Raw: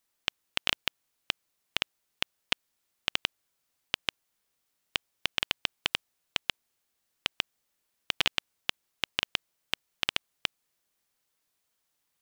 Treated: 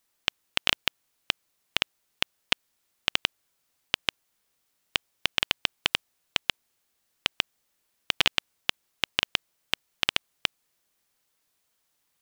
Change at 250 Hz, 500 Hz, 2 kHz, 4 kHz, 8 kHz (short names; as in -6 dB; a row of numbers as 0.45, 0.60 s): +4.0, +4.0, +4.0, +4.0, +4.0 dB